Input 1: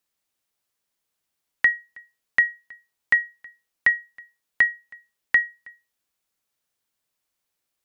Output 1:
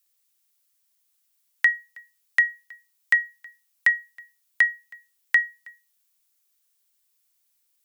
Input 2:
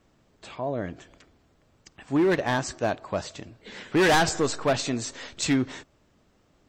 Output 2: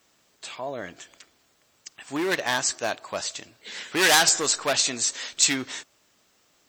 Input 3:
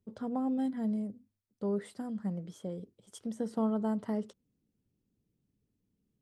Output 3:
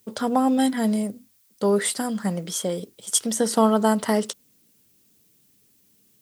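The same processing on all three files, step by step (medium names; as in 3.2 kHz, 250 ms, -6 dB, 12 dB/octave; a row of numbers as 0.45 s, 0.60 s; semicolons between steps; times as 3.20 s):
tilt EQ +4 dB/octave; normalise loudness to -23 LUFS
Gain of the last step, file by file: -4.0 dB, 0.0 dB, +18.5 dB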